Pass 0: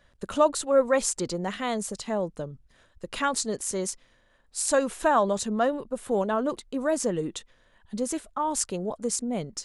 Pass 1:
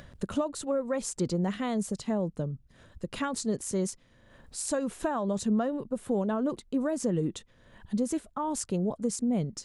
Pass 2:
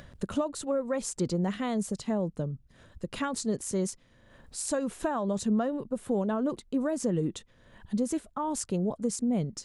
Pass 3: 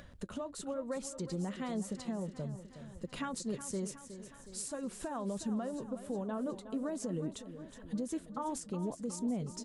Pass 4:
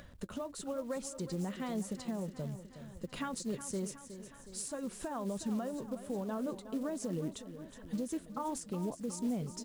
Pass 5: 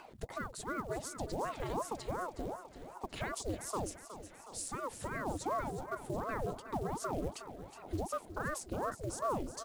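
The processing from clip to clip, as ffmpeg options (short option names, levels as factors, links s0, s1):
-af "acompressor=threshold=0.0631:ratio=10,equalizer=f=140:t=o:w=2.8:g=12,acompressor=mode=upward:threshold=0.0224:ratio=2.5,volume=0.531"
-af anull
-filter_complex "[0:a]alimiter=level_in=1.12:limit=0.0631:level=0:latency=1:release=300,volume=0.891,flanger=delay=3.5:depth=2.1:regen=-66:speed=0.99:shape=triangular,asplit=2[s0][s1];[s1]aecho=0:1:366|732|1098|1464|1830|2196|2562:0.251|0.148|0.0874|0.0516|0.0304|0.018|0.0106[s2];[s0][s2]amix=inputs=2:normalize=0"
-af "acrusher=bits=6:mode=log:mix=0:aa=0.000001"
-af "aeval=exprs='val(0)*sin(2*PI*510*n/s+510*0.8/2.7*sin(2*PI*2.7*n/s))':c=same,volume=1.33"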